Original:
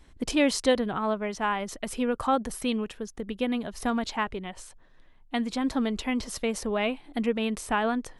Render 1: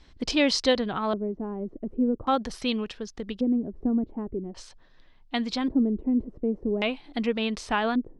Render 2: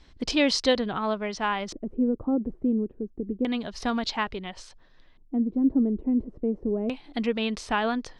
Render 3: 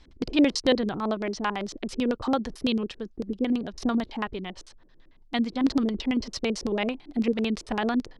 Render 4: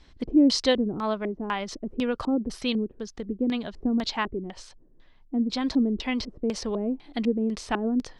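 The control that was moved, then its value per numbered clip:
LFO low-pass, rate: 0.44, 0.29, 9, 2 Hz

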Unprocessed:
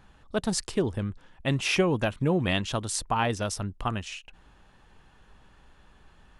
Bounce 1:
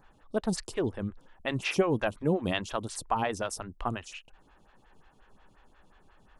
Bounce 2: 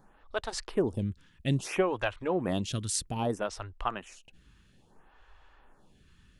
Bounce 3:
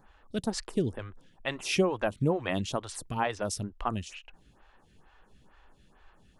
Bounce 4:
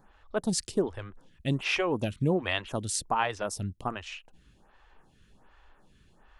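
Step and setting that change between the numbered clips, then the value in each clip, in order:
photocell phaser, rate: 5.6, 0.61, 2.2, 1.3 Hz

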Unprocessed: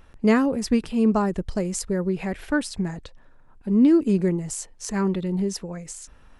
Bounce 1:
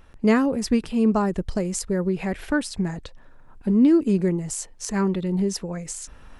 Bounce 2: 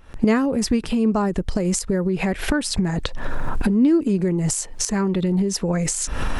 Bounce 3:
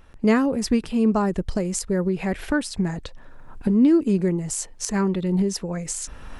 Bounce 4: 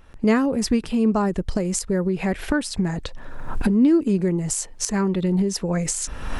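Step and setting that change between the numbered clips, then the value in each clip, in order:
recorder AGC, rising by: 5.3, 90, 14, 36 dB/s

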